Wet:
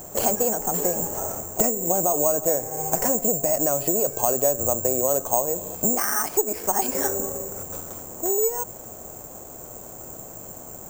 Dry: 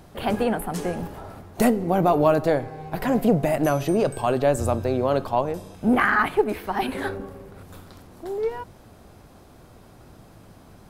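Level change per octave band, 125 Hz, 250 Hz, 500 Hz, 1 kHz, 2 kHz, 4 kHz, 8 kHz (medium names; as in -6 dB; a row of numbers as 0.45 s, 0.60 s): -8.0 dB, -7.0 dB, -1.5 dB, -3.0 dB, -9.5 dB, -2.0 dB, +19.0 dB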